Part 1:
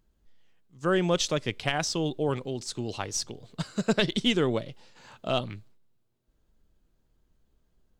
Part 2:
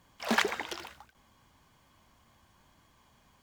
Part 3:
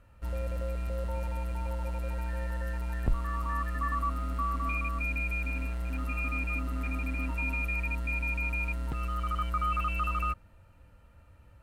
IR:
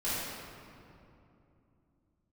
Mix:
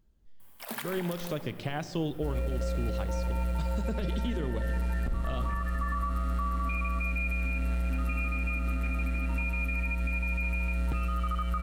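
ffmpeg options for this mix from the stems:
-filter_complex "[0:a]deesser=0.85,lowshelf=frequency=320:gain=6.5,volume=-10.5dB,asplit=2[link_01][link_02];[link_02]volume=-17.5dB[link_03];[1:a]aexciter=amount=10.3:drive=3.2:freq=8900,adelay=400,volume=-4dB,asplit=2[link_04][link_05];[link_05]volume=-16dB[link_06];[2:a]bandreject=frequency=1000:width=6.1,adelay=2000,volume=-1.5dB,asplit=2[link_07][link_08];[link_08]volume=-12.5dB[link_09];[link_01][link_07]amix=inputs=2:normalize=0,acontrast=67,alimiter=limit=-21.5dB:level=0:latency=1:release=200,volume=0dB[link_10];[3:a]atrim=start_sample=2205[link_11];[link_03][link_06][link_09]amix=inputs=3:normalize=0[link_12];[link_12][link_11]afir=irnorm=-1:irlink=0[link_13];[link_04][link_10][link_13]amix=inputs=3:normalize=0,alimiter=limit=-22dB:level=0:latency=1:release=175"

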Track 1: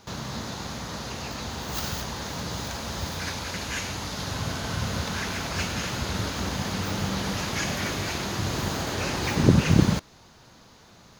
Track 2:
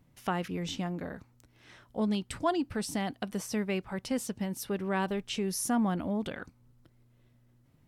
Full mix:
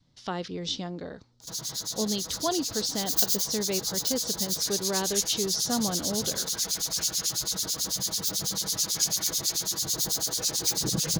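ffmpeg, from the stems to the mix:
ffmpeg -i stem1.wav -i stem2.wav -filter_complex "[0:a]aecho=1:1:6.2:0.76,acrossover=split=2400[link_01][link_02];[link_01]aeval=exprs='val(0)*(1-1/2+1/2*cos(2*PI*9.1*n/s))':channel_layout=same[link_03];[link_02]aeval=exprs='val(0)*(1-1/2-1/2*cos(2*PI*9.1*n/s))':channel_layout=same[link_04];[link_03][link_04]amix=inputs=2:normalize=0,adelay=1400,volume=-10dB[link_05];[1:a]lowpass=frequency=4300:width=0.5412,lowpass=frequency=4300:width=1.3066,volume=-2.5dB[link_06];[link_05][link_06]amix=inputs=2:normalize=0,adynamicequalizer=threshold=0.00355:dfrequency=450:dqfactor=1.7:tfrequency=450:tqfactor=1.7:attack=5:release=100:ratio=0.375:range=3.5:mode=boostabove:tftype=bell,aexciter=amount=10.7:drive=5.9:freq=3800" out.wav

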